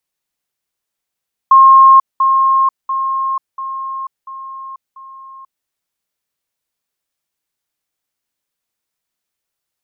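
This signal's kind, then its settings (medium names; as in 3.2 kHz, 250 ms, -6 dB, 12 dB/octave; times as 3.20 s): level ladder 1.07 kHz -2.5 dBFS, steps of -6 dB, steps 6, 0.49 s 0.20 s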